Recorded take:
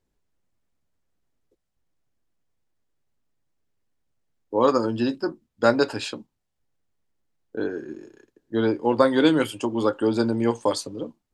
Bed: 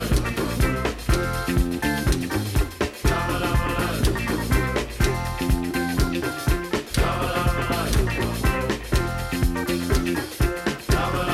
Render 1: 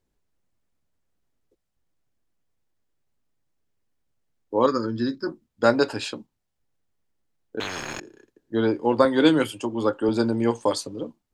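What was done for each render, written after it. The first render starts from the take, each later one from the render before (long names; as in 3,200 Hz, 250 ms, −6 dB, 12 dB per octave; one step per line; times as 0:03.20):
0:04.66–0:05.27: phaser with its sweep stopped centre 2,800 Hz, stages 6
0:07.60–0:08.00: every bin compressed towards the loudest bin 10 to 1
0:09.05–0:10.09: multiband upward and downward expander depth 40%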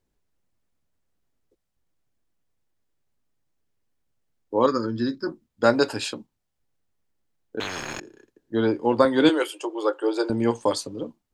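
0:05.73–0:06.14: high-shelf EQ 8,400 Hz +10 dB
0:09.29–0:10.30: Butterworth high-pass 320 Hz 72 dB per octave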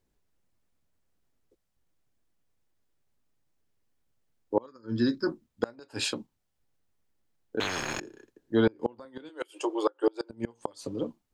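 gate with flip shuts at −13 dBFS, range −30 dB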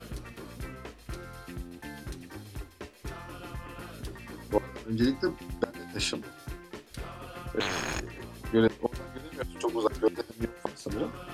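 mix in bed −19 dB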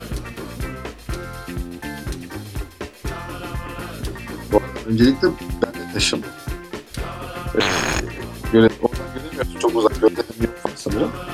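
level +12 dB
brickwall limiter −3 dBFS, peak gain reduction 2.5 dB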